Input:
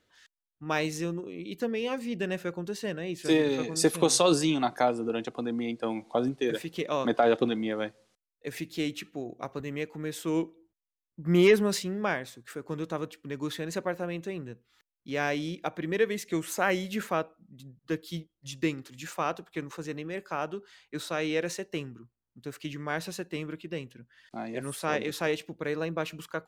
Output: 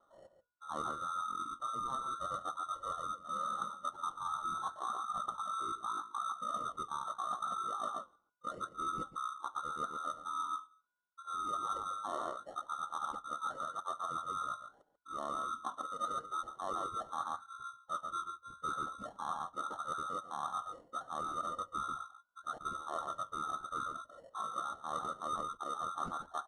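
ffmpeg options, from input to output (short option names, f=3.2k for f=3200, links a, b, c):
-filter_complex "[0:a]lowpass=f=2.5k:t=q:w=0.5098,lowpass=f=2.5k:t=q:w=0.6013,lowpass=f=2.5k:t=q:w=0.9,lowpass=f=2.5k:t=q:w=2.563,afreqshift=-2900,bandreject=f=840:w=12,asplit=2[a][b];[b]acrusher=samples=9:mix=1:aa=0.000001,volume=-8.5dB[c];[a][c]amix=inputs=2:normalize=0,asplit=2[d][e];[e]adelay=139.9,volume=-10dB,highshelf=f=4k:g=-3.15[f];[d][f]amix=inputs=2:normalize=0,flanger=delay=1.6:depth=8.9:regen=-72:speed=0.79:shape=sinusoidal,areverse,acompressor=threshold=-41dB:ratio=20,areverse,bandreject=f=50:t=h:w=6,bandreject=f=100:t=h:w=6,bandreject=f=150:t=h:w=6,bandreject=f=200:t=h:w=6,asetrate=22050,aresample=44100,atempo=2,volume=6.5dB"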